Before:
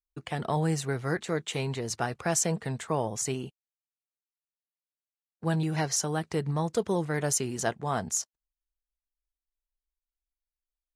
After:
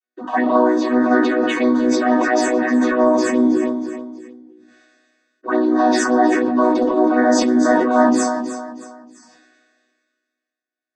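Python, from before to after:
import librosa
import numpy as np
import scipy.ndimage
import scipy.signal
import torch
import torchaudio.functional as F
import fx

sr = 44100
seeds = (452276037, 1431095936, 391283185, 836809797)

p1 = fx.chord_vocoder(x, sr, chord='major triad', root=59)
p2 = fx.over_compress(p1, sr, threshold_db=-31.0, ratio=-0.5)
p3 = p1 + (p2 * librosa.db_to_amplitude(-0.5))
p4 = fx.room_shoebox(p3, sr, seeds[0], volume_m3=36.0, walls='mixed', distance_m=2.5)
p5 = fx.env_phaser(p4, sr, low_hz=160.0, high_hz=2700.0, full_db=-5.5)
p6 = fx.band_shelf(p5, sr, hz=1200.0, db=13.0, octaves=1.7)
p7 = p6 + fx.echo_feedback(p6, sr, ms=317, feedback_pct=34, wet_db=-13.5, dry=0)
p8 = fx.sustainer(p7, sr, db_per_s=30.0)
y = p8 * librosa.db_to_amplitude(-7.0)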